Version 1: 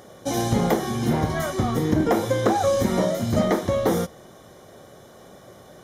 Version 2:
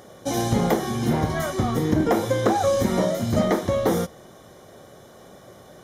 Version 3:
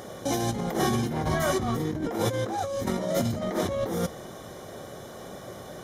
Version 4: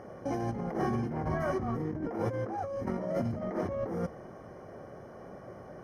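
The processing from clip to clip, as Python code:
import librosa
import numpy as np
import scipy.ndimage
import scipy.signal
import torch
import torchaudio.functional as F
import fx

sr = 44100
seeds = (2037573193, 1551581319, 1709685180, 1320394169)

y1 = x
y2 = fx.over_compress(y1, sr, threshold_db=-28.0, ratio=-1.0)
y3 = np.convolve(y2, np.full(12, 1.0 / 12))[:len(y2)]
y3 = y3 * librosa.db_to_amplitude(-5.0)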